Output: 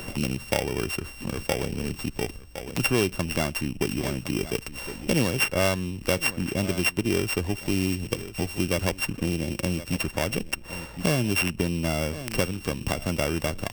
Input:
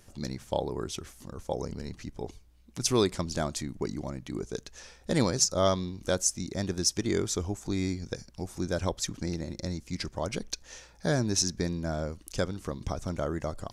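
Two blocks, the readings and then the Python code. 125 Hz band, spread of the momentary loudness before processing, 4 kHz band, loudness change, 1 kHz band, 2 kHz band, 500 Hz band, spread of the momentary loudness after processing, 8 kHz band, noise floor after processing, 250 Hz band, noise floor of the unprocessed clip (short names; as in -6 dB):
+5.0 dB, 14 LU, +4.0 dB, +4.0 dB, +2.5 dB, +12.0 dB, +3.0 dB, 8 LU, -2.0 dB, -43 dBFS, +4.5 dB, -57 dBFS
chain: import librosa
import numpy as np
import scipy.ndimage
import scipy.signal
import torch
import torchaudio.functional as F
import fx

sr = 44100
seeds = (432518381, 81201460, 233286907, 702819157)

y = np.r_[np.sort(x[:len(x) // 16 * 16].reshape(-1, 16), axis=1).ravel(), x[len(x) // 16 * 16:]]
y = y + 10.0 ** (-18.5 / 20.0) * np.pad(y, (int(1061 * sr / 1000.0), 0))[:len(y)]
y = fx.band_squash(y, sr, depth_pct=70)
y = y * 10.0 ** (4.5 / 20.0)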